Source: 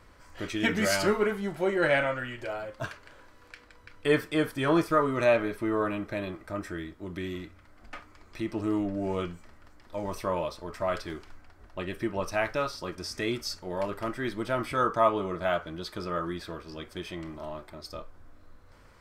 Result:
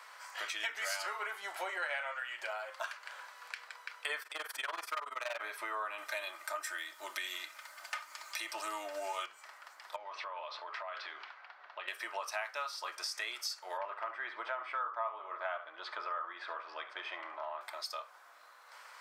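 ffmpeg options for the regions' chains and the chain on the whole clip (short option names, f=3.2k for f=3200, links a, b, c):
-filter_complex "[0:a]asettb=1/sr,asplit=3[a][b][c];[a]atrim=end=4.224[d];[b]atrim=start=4.22:end=5.41,asetpts=PTS-STARTPTS,afade=t=in:d=0.004:c=qsin,afade=t=out:st=1.186:d=0.004:c=qsin,tremolo=f=21:d=0.919,acompressor=mode=upward:threshold=-36dB:ratio=2.5:attack=3.2:release=140:knee=2.83:detection=peak,asoftclip=type=hard:threshold=-25dB[e];[c]atrim=start=5.406[f];[d][e]acrossfade=d=0.004:c1=hsin:c2=qsin[g];[g][f]acrossfade=d=0.004:c1=qsin:c2=hsin,asettb=1/sr,asplit=3[h][i][j];[h]atrim=end=5.984[k];[i]atrim=start=5.98:end=9.26,asetpts=PTS-STARTPTS,afade=t=in:d=0.004:c=qsin,afade=t=out:st=3.276:d=0.004:c=qsin,highshelf=f=3.7k:g=11.5,aecho=1:1:3.3:0.53,atrim=end_sample=144648[l];[j]atrim=start=9.256[m];[k][l]acrossfade=d=0.004:c1=hsin:c2=qsin[n];[n][m]acrossfade=d=0.004:c1=qsin:c2=hsin,asettb=1/sr,asplit=3[o][p][q];[o]atrim=end=9.964[r];[p]atrim=start=9.96:end=11.88,asetpts=PTS-STARTPTS,afade=t=in:d=0.004:c=qsin,afade=t=out:st=1.916:d=0.004:c=qsin,lowpass=f=4k:w=0.5412,lowpass=f=4k:w=1.3066,bandreject=f=60:t=h:w=6,bandreject=f=120:t=h:w=6,bandreject=f=180:t=h:w=6,bandreject=f=240:t=h:w=6,bandreject=f=300:t=h:w=6,bandreject=f=360:t=h:w=6,bandreject=f=420:t=h:w=6,acompressor=threshold=-40dB:ratio=12:attack=3.2:release=140:knee=1:detection=peak[s];[q]atrim=start=11.876[t];[r][s]acrossfade=d=0.004:c1=hsin:c2=qsin[u];[u][t]acrossfade=d=0.004:c1=qsin:c2=hsin,asettb=1/sr,asplit=3[v][w][x];[v]atrim=end=13.774[y];[w]atrim=start=13.77:end=17.61,asetpts=PTS-STARTPTS,afade=t=in:d=0.004:c=qsin,afade=t=out:st=3.836:d=0.004:c=qsin,lowpass=2k,aecho=1:1:71:0.211,atrim=end_sample=169344[z];[x]atrim=start=17.606[aa];[y][z]acrossfade=d=0.004:c1=hsin:c2=qsin[ab];[ab][aa]acrossfade=d=0.004:c1=qsin:c2=hsin,highpass=f=770:w=0.5412,highpass=f=770:w=1.3066,acompressor=threshold=-46dB:ratio=4,volume=8dB"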